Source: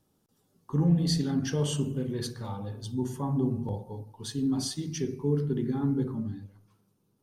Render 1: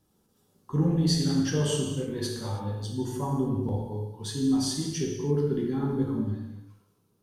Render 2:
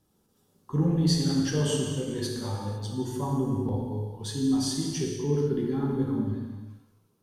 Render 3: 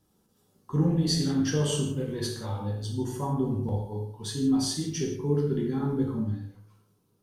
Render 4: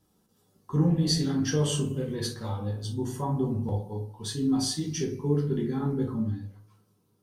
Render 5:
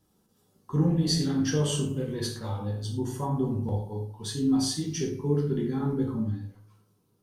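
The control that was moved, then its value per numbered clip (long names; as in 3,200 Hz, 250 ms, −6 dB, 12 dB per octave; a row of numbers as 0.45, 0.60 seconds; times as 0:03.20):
reverb whose tail is shaped and stops, gate: 350, 530, 200, 90, 140 milliseconds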